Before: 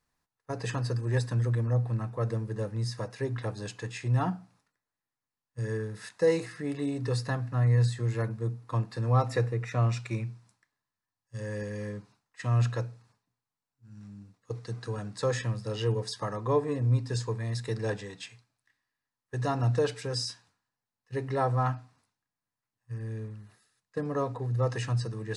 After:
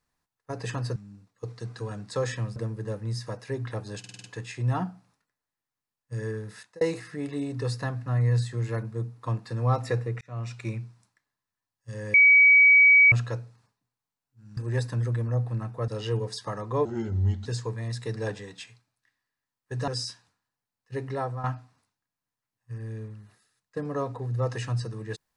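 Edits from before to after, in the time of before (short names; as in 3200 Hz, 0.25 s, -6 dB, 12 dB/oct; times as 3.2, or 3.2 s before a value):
0.96–2.27 swap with 14.03–15.63
3.7 stutter 0.05 s, 6 plays
5.97–6.27 fade out
9.67–10.13 fade in
11.6–12.58 bleep 2270 Hz -12.5 dBFS
16.6–17.08 speed 79%
19.5–20.08 cut
21.25–21.64 fade out, to -10.5 dB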